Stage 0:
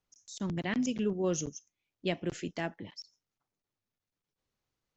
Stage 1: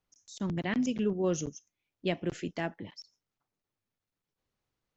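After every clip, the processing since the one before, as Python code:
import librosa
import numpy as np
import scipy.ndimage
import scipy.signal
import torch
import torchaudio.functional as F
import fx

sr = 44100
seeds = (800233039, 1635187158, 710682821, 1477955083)

y = fx.high_shelf(x, sr, hz=4900.0, db=-6.5)
y = y * 10.0 ** (1.5 / 20.0)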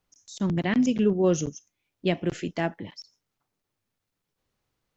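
y = fx.hpss(x, sr, part='percussive', gain_db=-3)
y = y * 10.0 ** (7.5 / 20.0)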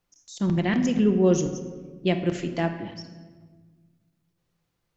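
y = fx.room_shoebox(x, sr, seeds[0], volume_m3=1300.0, walls='mixed', distance_m=0.83)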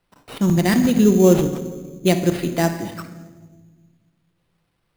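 y = fx.sample_hold(x, sr, seeds[1], rate_hz=6700.0, jitter_pct=0)
y = y * 10.0 ** (6.5 / 20.0)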